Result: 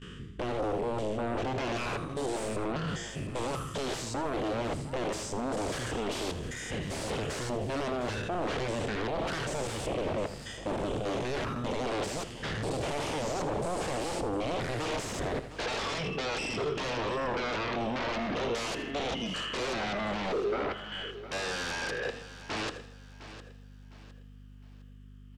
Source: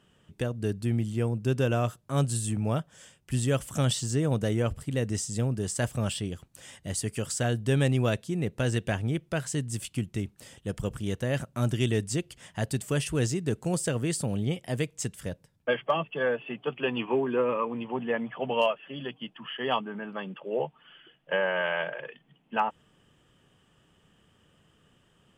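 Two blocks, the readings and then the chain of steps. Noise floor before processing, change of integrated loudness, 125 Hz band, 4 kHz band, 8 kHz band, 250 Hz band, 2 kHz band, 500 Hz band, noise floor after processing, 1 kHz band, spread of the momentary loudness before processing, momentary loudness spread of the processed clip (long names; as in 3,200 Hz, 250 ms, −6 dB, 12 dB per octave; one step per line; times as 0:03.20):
−65 dBFS, −3.5 dB, −10.0 dB, +1.0 dB, −5.5 dB, −4.5 dB, −1.0 dB, −2.0 dB, −50 dBFS, +0.5 dB, 10 LU, 6 LU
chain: spectrum averaged block by block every 200 ms
reverb reduction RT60 1.6 s
Chebyshev band-stop filter 420–1,200 Hz, order 2
noise gate with hold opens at −58 dBFS
reversed playback
downward compressor 6 to 1, threshold −45 dBFS, peak gain reduction 20 dB
reversed playback
sine wavefolder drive 18 dB, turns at −32.5 dBFS
low-pass filter 6,500 Hz 12 dB per octave
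dynamic equaliser 530 Hz, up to +7 dB, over −52 dBFS, Q 0.92
mains hum 50 Hz, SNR 18 dB
on a send: repeating echo 80 ms, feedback 36%, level −14 dB
on the sum: feedback echo at a low word length 708 ms, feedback 35%, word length 11 bits, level −14 dB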